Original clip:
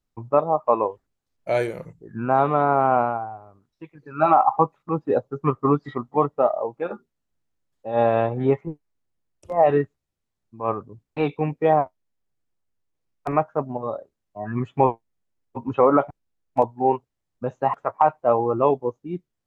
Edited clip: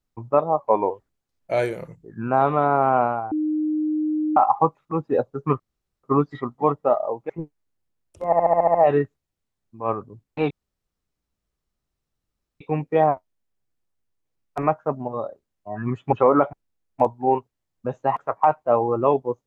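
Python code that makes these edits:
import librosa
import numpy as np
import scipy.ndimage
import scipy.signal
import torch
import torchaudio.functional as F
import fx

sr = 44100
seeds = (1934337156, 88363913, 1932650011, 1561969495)

y = fx.edit(x, sr, fx.speed_span(start_s=0.59, length_s=0.29, speed=0.92),
    fx.bleep(start_s=3.29, length_s=1.05, hz=307.0, db=-20.0),
    fx.insert_room_tone(at_s=5.57, length_s=0.44),
    fx.cut(start_s=6.83, length_s=1.75),
    fx.stutter(start_s=9.54, slice_s=0.07, count=8),
    fx.insert_room_tone(at_s=11.3, length_s=2.1),
    fx.cut(start_s=14.82, length_s=0.88), tone=tone)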